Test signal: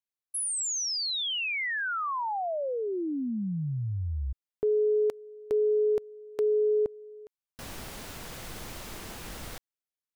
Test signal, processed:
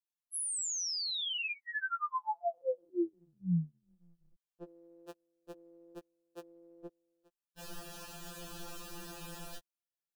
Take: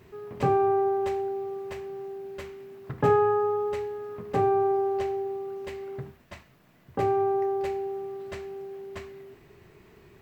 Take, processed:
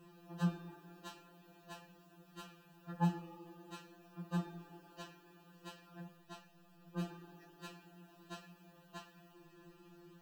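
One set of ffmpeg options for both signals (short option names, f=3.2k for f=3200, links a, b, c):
-af "asuperstop=centerf=2100:order=8:qfactor=4.2,afftfilt=real='re*2.83*eq(mod(b,8),0)':imag='im*2.83*eq(mod(b,8),0)':win_size=2048:overlap=0.75,volume=-3dB"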